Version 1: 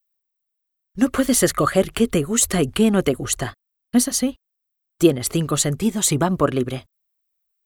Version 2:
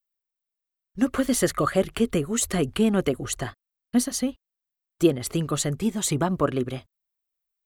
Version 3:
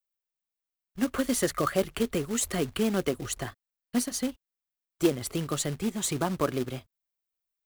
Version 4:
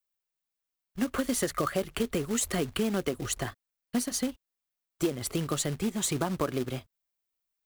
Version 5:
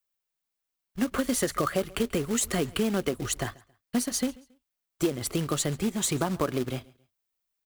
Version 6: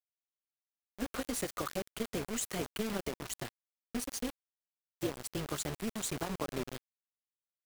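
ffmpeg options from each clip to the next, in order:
-af "highshelf=f=5300:g=-4.5,volume=0.596"
-filter_complex "[0:a]acrossover=split=240[s0][s1];[s0]alimiter=level_in=1.19:limit=0.0631:level=0:latency=1:release=134,volume=0.841[s2];[s2][s1]amix=inputs=2:normalize=0,acrusher=bits=3:mode=log:mix=0:aa=0.000001,volume=0.631"
-af "acompressor=threshold=0.0447:ratio=4,volume=1.26"
-af "aecho=1:1:137|274:0.0668|0.0201,volume=1.26"
-af "acrusher=bits=4:mix=0:aa=0.000001,tremolo=f=220:d=0.71,volume=0.447"

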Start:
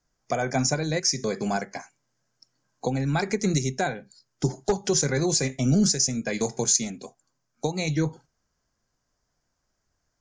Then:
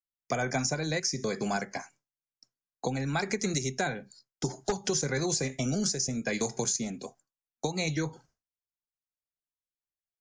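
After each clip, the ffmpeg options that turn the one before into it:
-filter_complex "[0:a]agate=range=0.0224:threshold=0.00282:ratio=3:detection=peak,acrossover=split=390|980[s0][s1][s2];[s0]acompressor=threshold=0.0251:ratio=4[s3];[s1]acompressor=threshold=0.0178:ratio=4[s4];[s2]acompressor=threshold=0.0355:ratio=4[s5];[s3][s4][s5]amix=inputs=3:normalize=0"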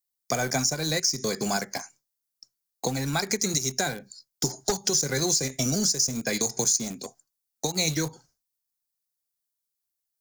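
-filter_complex "[0:a]asplit=2[s0][s1];[s1]aeval=exprs='val(0)*gte(abs(val(0)),0.0251)':c=same,volume=0.355[s2];[s0][s2]amix=inputs=2:normalize=0,aexciter=amount=3.9:drive=2.7:freq=4000,alimiter=limit=0.251:level=0:latency=1:release=171"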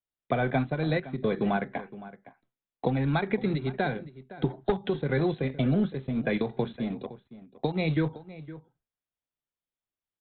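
-filter_complex "[0:a]tiltshelf=f=840:g=3.5,asplit=2[s0][s1];[s1]adelay=513.1,volume=0.158,highshelf=f=4000:g=-11.5[s2];[s0][s2]amix=inputs=2:normalize=0,aresample=8000,aresample=44100"

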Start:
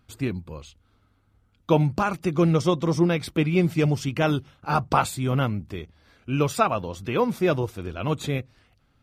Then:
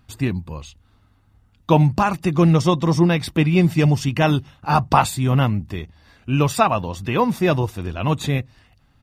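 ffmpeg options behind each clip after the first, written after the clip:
-af "aecho=1:1:1.1:0.35,volume=1.78"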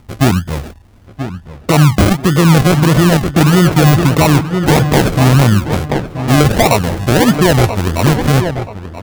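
-filter_complex "[0:a]acrusher=samples=38:mix=1:aa=0.000001:lfo=1:lforange=22.8:lforate=1.6,asplit=2[s0][s1];[s1]adelay=980,lowpass=f=2400:p=1,volume=0.251,asplit=2[s2][s3];[s3]adelay=980,lowpass=f=2400:p=1,volume=0.37,asplit=2[s4][s5];[s5]adelay=980,lowpass=f=2400:p=1,volume=0.37,asplit=2[s6][s7];[s7]adelay=980,lowpass=f=2400:p=1,volume=0.37[s8];[s0][s2][s4][s6][s8]amix=inputs=5:normalize=0,alimiter=level_in=4.47:limit=0.891:release=50:level=0:latency=1,volume=0.891"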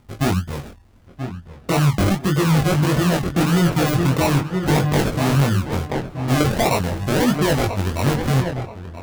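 -af "flanger=delay=20:depth=3.5:speed=0.4,volume=2.11,asoftclip=hard,volume=0.473,volume=0.596"

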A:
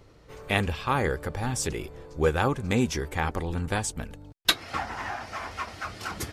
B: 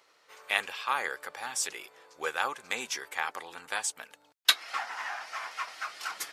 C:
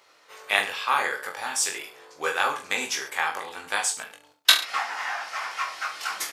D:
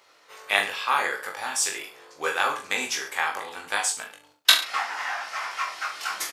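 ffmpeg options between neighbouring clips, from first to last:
-af "highpass=1000"
-af "aecho=1:1:20|43|69.45|99.87|134.8:0.631|0.398|0.251|0.158|0.1,volume=1.68"
-filter_complex "[0:a]asplit=2[s0][s1];[s1]adelay=40,volume=0.251[s2];[s0][s2]amix=inputs=2:normalize=0"

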